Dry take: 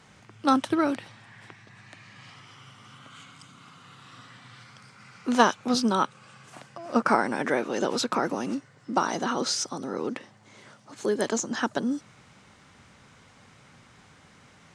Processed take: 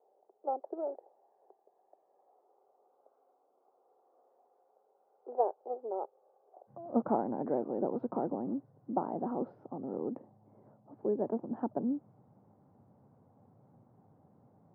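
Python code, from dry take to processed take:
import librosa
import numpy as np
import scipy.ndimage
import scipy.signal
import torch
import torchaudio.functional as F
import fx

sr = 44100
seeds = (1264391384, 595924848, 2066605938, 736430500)

y = fx.ellip_bandpass(x, sr, low_hz=fx.steps((0.0, 390.0), (6.67, 100.0)), high_hz=790.0, order=3, stop_db=80)
y = F.gain(torch.from_numpy(y), -5.0).numpy()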